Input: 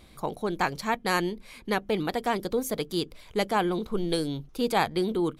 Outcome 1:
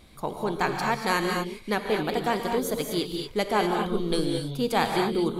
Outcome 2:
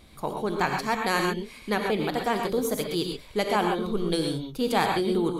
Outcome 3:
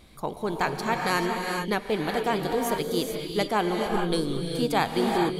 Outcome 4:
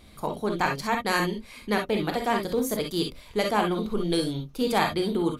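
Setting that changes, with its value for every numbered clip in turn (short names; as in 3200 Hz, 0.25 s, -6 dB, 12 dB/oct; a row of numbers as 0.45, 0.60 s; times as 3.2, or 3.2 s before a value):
non-linear reverb, gate: 260, 150, 470, 80 ms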